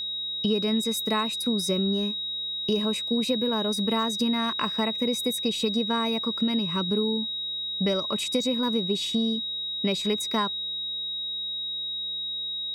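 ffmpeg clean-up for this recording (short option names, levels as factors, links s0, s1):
-af "bandreject=f=100.7:t=h:w=4,bandreject=f=201.4:t=h:w=4,bandreject=f=302.1:t=h:w=4,bandreject=f=402.8:t=h:w=4,bandreject=f=503.5:t=h:w=4,bandreject=f=3800:w=30"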